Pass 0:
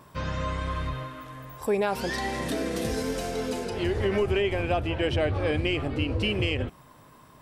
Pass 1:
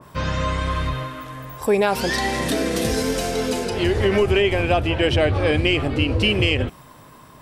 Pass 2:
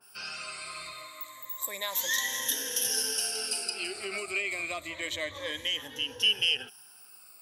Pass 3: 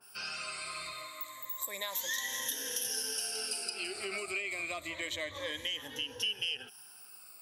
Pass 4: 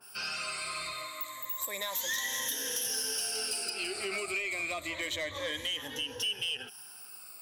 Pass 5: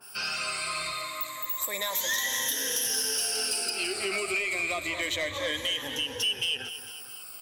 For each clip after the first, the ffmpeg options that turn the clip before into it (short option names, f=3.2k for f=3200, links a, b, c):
-af "adynamicequalizer=threshold=0.0112:dfrequency=2100:dqfactor=0.7:tfrequency=2100:tqfactor=0.7:attack=5:release=100:ratio=0.375:range=1.5:mode=boostabove:tftype=highshelf,volume=7dB"
-af "afftfilt=real='re*pow(10,18/40*sin(2*PI*(1.1*log(max(b,1)*sr/1024/100)/log(2)-(-0.29)*(pts-256)/sr)))':imag='im*pow(10,18/40*sin(2*PI*(1.1*log(max(b,1)*sr/1024/100)/log(2)-(-0.29)*(pts-256)/sr)))':win_size=1024:overlap=0.75,aderivative,volume=-1.5dB"
-af "acompressor=threshold=-35dB:ratio=2.5"
-af "asoftclip=type=tanh:threshold=-31dB,volume=4.5dB"
-af "aecho=1:1:226|452|678|904|1130:0.251|0.128|0.0653|0.0333|0.017,volume=4.5dB"